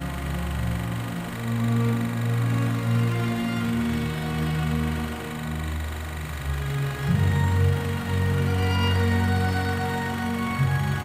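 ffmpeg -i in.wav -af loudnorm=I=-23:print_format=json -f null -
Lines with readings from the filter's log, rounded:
"input_i" : "-25.2",
"input_tp" : "-11.0",
"input_lra" : "3.4",
"input_thresh" : "-35.2",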